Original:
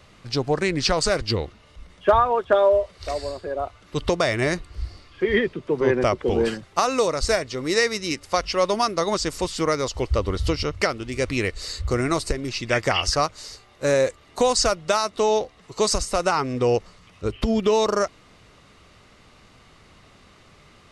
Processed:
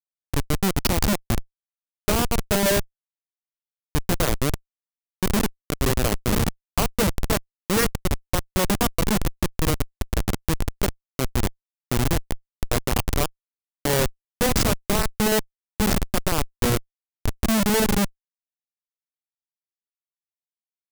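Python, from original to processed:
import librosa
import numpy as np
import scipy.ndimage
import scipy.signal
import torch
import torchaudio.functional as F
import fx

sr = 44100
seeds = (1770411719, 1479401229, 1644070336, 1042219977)

y = fx.peak_eq(x, sr, hz=200.0, db=15.0, octaves=0.38)
y = fx.rev_fdn(y, sr, rt60_s=0.51, lf_ratio=0.9, hf_ratio=0.25, size_ms=41.0, drr_db=18.0)
y = fx.schmitt(y, sr, flips_db=-15.0)
y = fx.high_shelf(y, sr, hz=5600.0, db=10.0)
y = y * librosa.db_to_amplitude(2.0)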